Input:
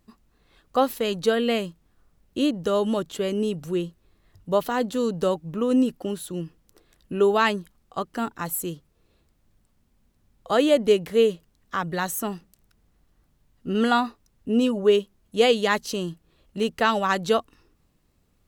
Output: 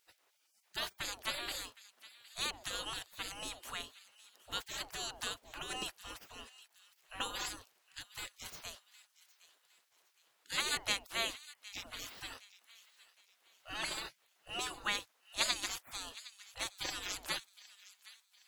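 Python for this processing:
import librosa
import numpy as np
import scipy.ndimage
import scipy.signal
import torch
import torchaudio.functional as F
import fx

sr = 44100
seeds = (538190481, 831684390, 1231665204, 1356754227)

y = fx.spec_gate(x, sr, threshold_db=-30, keep='weak')
y = fx.high_shelf(y, sr, hz=5200.0, db=-5.0)
y = fx.echo_wet_highpass(y, sr, ms=763, feedback_pct=38, hz=1700.0, wet_db=-17)
y = y * 10.0 ** (6.0 / 20.0)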